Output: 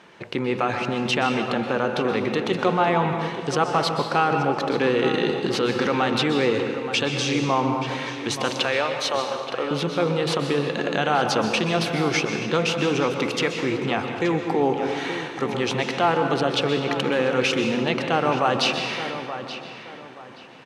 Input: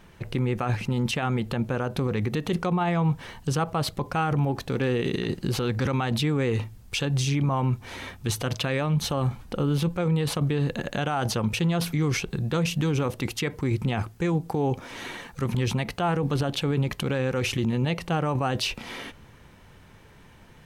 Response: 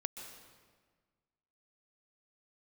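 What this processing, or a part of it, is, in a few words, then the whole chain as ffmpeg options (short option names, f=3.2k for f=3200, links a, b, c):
supermarket ceiling speaker: -filter_complex "[0:a]asettb=1/sr,asplit=3[a][b][c];[a]atrim=end=8.504[d];[b]atrim=start=8.5:end=9.71,asetpts=PTS-STARTPTS,afade=t=in:d=0.004:c=qsin,afade=t=out:st=1.206:d=0.004:c=qsin,highpass=450[e];[c]atrim=start=9.706[f];[d][e]acrossfade=d=0.004:c1=hsin:c2=qsin[g];[g][f]acrossfade=d=0.004:c1=qsin:c2=hsin,highpass=300,lowpass=5.5k,asplit=2[h][i];[i]adelay=876,lowpass=f=3.6k:p=1,volume=-11dB,asplit=2[j][k];[k]adelay=876,lowpass=f=3.6k:p=1,volume=0.3,asplit=2[l][m];[m]adelay=876,lowpass=f=3.6k:p=1,volume=0.3[n];[h][j][l][n]amix=inputs=4:normalize=0[o];[1:a]atrim=start_sample=2205[p];[o][p]afir=irnorm=-1:irlink=0,volume=8dB"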